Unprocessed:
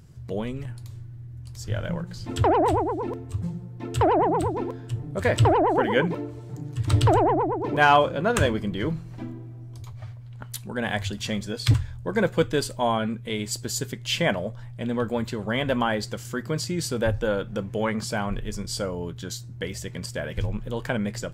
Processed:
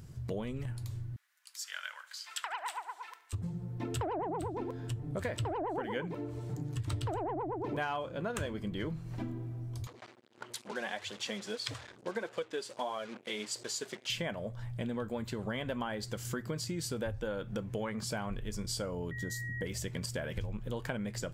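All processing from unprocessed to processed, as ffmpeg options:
-filter_complex "[0:a]asettb=1/sr,asplit=3[a][b][c];[a]atrim=end=1.164[d];[b]atrim=start=1.16:end=3.33,asetpts=PTS-STARTPTS,afade=t=in:d=0.004:c=qsin,afade=t=out:st=2.166:d=0.004:c=qsin,highpass=f=1.3k:w=0.5412,highpass=f=1.3k:w=1.3066,aecho=1:1:72|144|216|288|360:0.112|0.0628|0.0352|0.0197|0.011,atrim=end_sample=95697[e];[c]atrim=start=3.326[f];[d][e]acrossfade=d=0.004:c1=hsin:c2=qsin[g];[g][f]acrossfade=d=0.004:c1=qsin:c2=hsin,asettb=1/sr,asplit=3[h][i][j];[h]atrim=end=9.874[k];[i]atrim=start=9.87:end=14.1,asetpts=PTS-STARTPTS,afade=t=in:d=0.004:c=qsin,afade=t=out:st=4.226:d=0.004:c=qsin,flanger=delay=1.6:depth=4:regen=23:speed=1.6:shape=sinusoidal,acrusher=bits=6:mix=0:aa=0.5,highpass=350,lowpass=7.4k[l];[j]atrim=start=14.096[m];[k][l]acrossfade=d=0.004:c1=hsin:c2=qsin[n];[n][m]acrossfade=d=0.004:c1=qsin:c2=hsin,asettb=1/sr,asplit=3[o][p][q];[o]atrim=end=19.114[r];[p]atrim=start=19.11:end=19.66,asetpts=PTS-STARTPTS,afade=t=in:d=0.004:c=qsin,afade=t=out:st=0.546:d=0.004:c=qsin,equalizer=f=2.6k:w=0.73:g=-15,aeval=exprs='val(0)+0.0126*sin(2*PI*1900*n/s)':c=same[s];[q]atrim=start=19.656[t];[r][s]acrossfade=d=0.004:c1=hsin:c2=qsin[u];[u][t]acrossfade=d=0.004:c1=qsin:c2=hsin,highshelf=f=11k:g=3,acompressor=threshold=-34dB:ratio=6"

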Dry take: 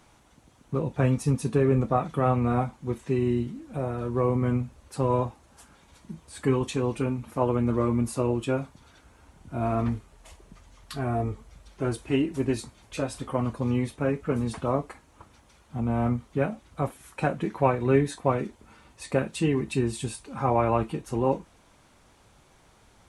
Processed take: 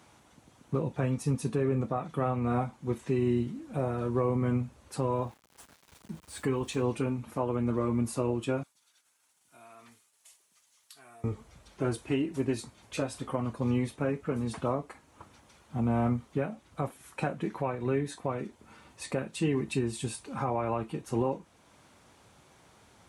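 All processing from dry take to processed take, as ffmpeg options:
-filter_complex "[0:a]asettb=1/sr,asplit=3[a][b][c];[a]atrim=end=5.094[d];[b]atrim=start=5.09:end=6.82,asetpts=PTS-STARTPTS,afade=t=in:d=0.004:c=qsin,afade=t=out:st=1.726:d=0.004:c=qsin,asubboost=boost=6:cutoff=66,aeval=exprs='val(0)*gte(abs(val(0)),0.00299)':c=same[e];[c]atrim=start=6.816[f];[d][e]acrossfade=d=0.004:c1=hsin:c2=qsin[g];[g][f]acrossfade=d=0.004:c1=qsin:c2=hsin,asettb=1/sr,asplit=3[h][i][j];[h]atrim=end=8.634[k];[i]atrim=start=8.63:end=11.24,asetpts=PTS-STARTPTS,afade=t=in:d=0.004:c=qsin,afade=t=out:st=2.606:d=0.004:c=qsin,agate=range=-33dB:threshold=-53dB:ratio=3:release=100:detection=peak,aderivative,acompressor=threshold=-51dB:ratio=2.5:attack=3.2:release=140:knee=1:detection=peak[l];[j]atrim=start=11.236[m];[k][l]acrossfade=d=0.004:c1=hsin:c2=qsin[n];[n][m]acrossfade=d=0.004:c1=qsin:c2=hsin,highpass=85,alimiter=limit=-18.5dB:level=0:latency=1:release=471"

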